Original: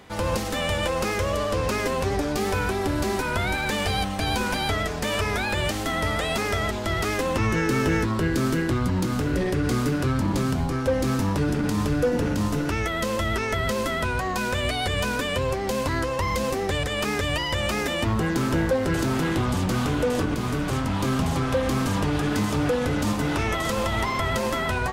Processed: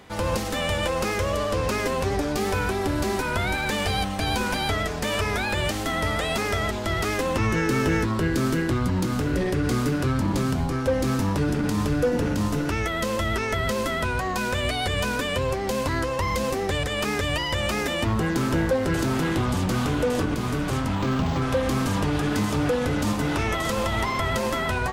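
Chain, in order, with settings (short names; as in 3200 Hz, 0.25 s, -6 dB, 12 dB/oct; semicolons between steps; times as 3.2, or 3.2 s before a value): 20.95–21.42 decimation joined by straight lines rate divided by 4×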